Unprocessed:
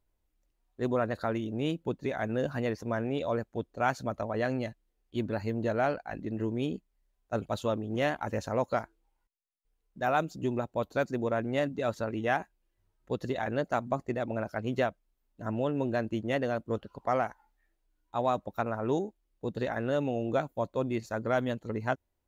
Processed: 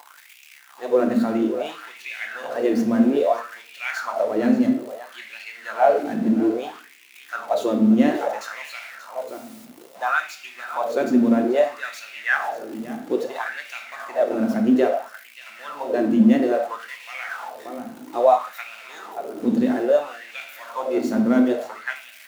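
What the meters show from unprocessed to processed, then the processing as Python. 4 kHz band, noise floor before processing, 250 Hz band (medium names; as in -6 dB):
+7.0 dB, -78 dBFS, +13.0 dB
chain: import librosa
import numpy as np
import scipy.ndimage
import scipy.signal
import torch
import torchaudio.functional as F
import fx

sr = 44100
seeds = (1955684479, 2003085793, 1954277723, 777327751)

y = x + 0.5 * 10.0 ** (-38.0 / 20.0) * np.sign(x)
y = scipy.signal.sosfilt(scipy.signal.butter(2, 83.0, 'highpass', fs=sr, output='sos'), y)
y = fx.peak_eq(y, sr, hz=250.0, db=4.5, octaves=0.37)
y = y + 10.0 ** (-13.0 / 20.0) * np.pad(y, (int(582 * sr / 1000.0), 0))[:len(y)]
y = fx.room_shoebox(y, sr, seeds[0], volume_m3=270.0, walls='mixed', distance_m=0.84)
y = fx.filter_lfo_highpass(y, sr, shape='sine', hz=0.6, low_hz=220.0, high_hz=2500.0, q=4.9)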